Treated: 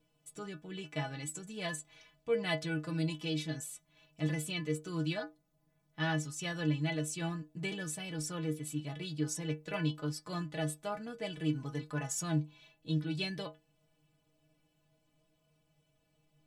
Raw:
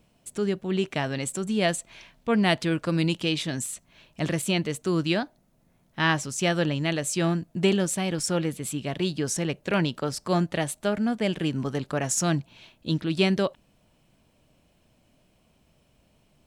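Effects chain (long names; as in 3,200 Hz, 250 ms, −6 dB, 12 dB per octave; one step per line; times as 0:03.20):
stiff-string resonator 150 Hz, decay 0.24 s, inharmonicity 0.008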